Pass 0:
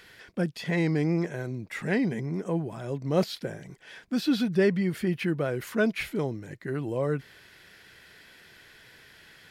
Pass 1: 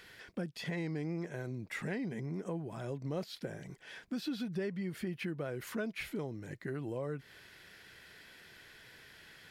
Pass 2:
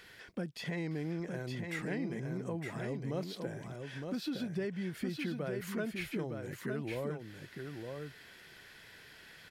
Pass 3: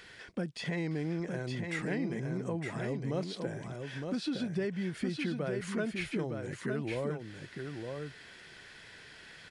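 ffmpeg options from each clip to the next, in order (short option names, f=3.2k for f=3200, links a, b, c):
-af "acompressor=threshold=-33dB:ratio=4,volume=-3dB"
-af "aecho=1:1:912:0.562"
-af "aresample=22050,aresample=44100,volume=3dB"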